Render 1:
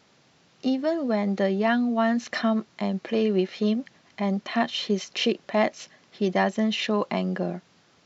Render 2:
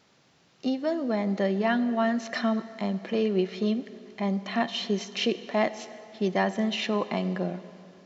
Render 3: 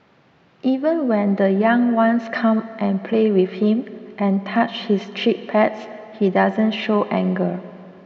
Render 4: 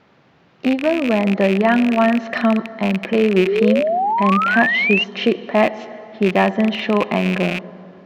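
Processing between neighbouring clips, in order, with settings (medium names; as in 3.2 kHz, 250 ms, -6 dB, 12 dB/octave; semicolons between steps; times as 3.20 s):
plate-style reverb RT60 2.9 s, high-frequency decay 0.8×, DRR 13 dB; trim -2.5 dB
low-pass 2.3 kHz 12 dB/octave; trim +9 dB
rattle on loud lows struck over -33 dBFS, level -14 dBFS; painted sound rise, 3.46–5.04 s, 370–2900 Hz -19 dBFS; trim +1 dB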